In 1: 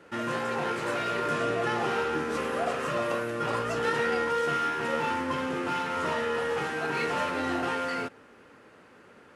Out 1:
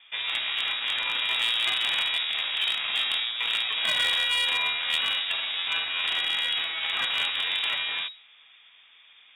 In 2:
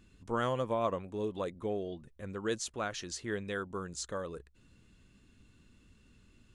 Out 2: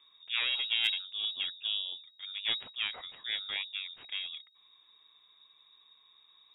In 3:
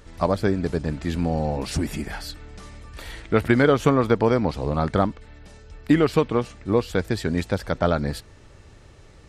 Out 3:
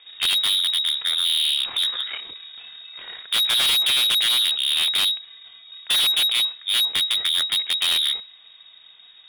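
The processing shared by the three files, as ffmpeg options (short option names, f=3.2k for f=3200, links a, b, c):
-af "aeval=exprs='0.562*(cos(1*acos(clip(val(0)/0.562,-1,1)))-cos(1*PI/2))+0.0158*(cos(5*acos(clip(val(0)/0.562,-1,1)))-cos(5*PI/2))+0.251*(cos(6*acos(clip(val(0)/0.562,-1,1)))-cos(6*PI/2))+0.0178*(cos(7*acos(clip(val(0)/0.562,-1,1)))-cos(7*PI/2))':c=same,lowpass=f=3.2k:t=q:w=0.5098,lowpass=f=3.2k:t=q:w=0.6013,lowpass=f=3.2k:t=q:w=0.9,lowpass=f=3.2k:t=q:w=2.563,afreqshift=-3800,volume=17.5dB,asoftclip=hard,volume=-17.5dB"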